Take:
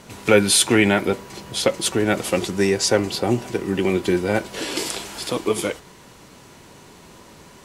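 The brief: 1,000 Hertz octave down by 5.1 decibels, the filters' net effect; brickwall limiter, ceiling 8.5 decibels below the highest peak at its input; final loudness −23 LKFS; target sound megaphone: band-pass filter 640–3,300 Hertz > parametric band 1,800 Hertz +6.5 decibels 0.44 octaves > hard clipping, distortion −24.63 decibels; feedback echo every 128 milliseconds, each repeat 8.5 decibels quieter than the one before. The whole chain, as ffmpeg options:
ffmpeg -i in.wav -af "equalizer=frequency=1000:width_type=o:gain=-7.5,alimiter=limit=-12dB:level=0:latency=1,highpass=640,lowpass=3300,equalizer=frequency=1800:width_type=o:width=0.44:gain=6.5,aecho=1:1:128|256|384|512:0.376|0.143|0.0543|0.0206,asoftclip=type=hard:threshold=-16.5dB,volume=6.5dB" out.wav

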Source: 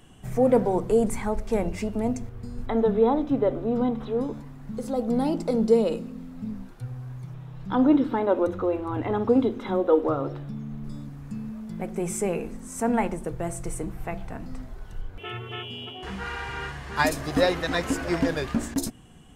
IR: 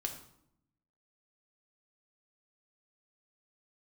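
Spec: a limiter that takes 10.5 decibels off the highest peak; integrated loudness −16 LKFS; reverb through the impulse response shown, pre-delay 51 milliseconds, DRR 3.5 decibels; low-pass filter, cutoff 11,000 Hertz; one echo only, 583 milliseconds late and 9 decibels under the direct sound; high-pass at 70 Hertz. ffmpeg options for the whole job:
-filter_complex "[0:a]highpass=70,lowpass=11000,alimiter=limit=-18dB:level=0:latency=1,aecho=1:1:583:0.355,asplit=2[link_01][link_02];[1:a]atrim=start_sample=2205,adelay=51[link_03];[link_02][link_03]afir=irnorm=-1:irlink=0,volume=-4dB[link_04];[link_01][link_04]amix=inputs=2:normalize=0,volume=11.5dB"

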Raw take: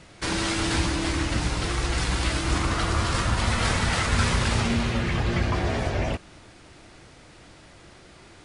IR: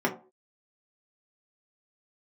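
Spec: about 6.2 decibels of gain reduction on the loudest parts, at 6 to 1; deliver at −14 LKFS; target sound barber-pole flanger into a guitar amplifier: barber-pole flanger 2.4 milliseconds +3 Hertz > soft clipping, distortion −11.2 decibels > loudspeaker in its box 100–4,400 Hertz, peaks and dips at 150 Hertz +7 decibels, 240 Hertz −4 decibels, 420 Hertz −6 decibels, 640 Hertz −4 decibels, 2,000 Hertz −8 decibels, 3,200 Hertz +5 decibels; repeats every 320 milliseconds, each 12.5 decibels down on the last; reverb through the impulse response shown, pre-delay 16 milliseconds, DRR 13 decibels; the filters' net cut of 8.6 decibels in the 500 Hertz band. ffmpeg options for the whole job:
-filter_complex "[0:a]equalizer=frequency=500:width_type=o:gain=-7.5,acompressor=threshold=-26dB:ratio=6,aecho=1:1:320|640|960:0.237|0.0569|0.0137,asplit=2[link_01][link_02];[1:a]atrim=start_sample=2205,adelay=16[link_03];[link_02][link_03]afir=irnorm=-1:irlink=0,volume=-25dB[link_04];[link_01][link_04]amix=inputs=2:normalize=0,asplit=2[link_05][link_06];[link_06]adelay=2.4,afreqshift=3[link_07];[link_05][link_07]amix=inputs=2:normalize=1,asoftclip=threshold=-32.5dB,highpass=100,equalizer=frequency=150:width_type=q:width=4:gain=7,equalizer=frequency=240:width_type=q:width=4:gain=-4,equalizer=frequency=420:width_type=q:width=4:gain=-6,equalizer=frequency=640:width_type=q:width=4:gain=-4,equalizer=frequency=2000:width_type=q:width=4:gain=-8,equalizer=frequency=3200:width_type=q:width=4:gain=5,lowpass=frequency=4400:width=0.5412,lowpass=frequency=4400:width=1.3066,volume=25dB"

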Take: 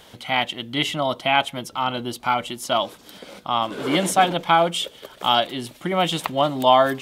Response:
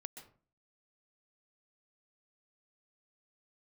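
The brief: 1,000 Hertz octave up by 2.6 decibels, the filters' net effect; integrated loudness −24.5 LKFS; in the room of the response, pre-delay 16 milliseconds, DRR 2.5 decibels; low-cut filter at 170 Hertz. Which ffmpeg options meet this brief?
-filter_complex "[0:a]highpass=170,equalizer=frequency=1000:width_type=o:gain=3.5,asplit=2[link_01][link_02];[1:a]atrim=start_sample=2205,adelay=16[link_03];[link_02][link_03]afir=irnorm=-1:irlink=0,volume=2dB[link_04];[link_01][link_04]amix=inputs=2:normalize=0,volume=-6dB"

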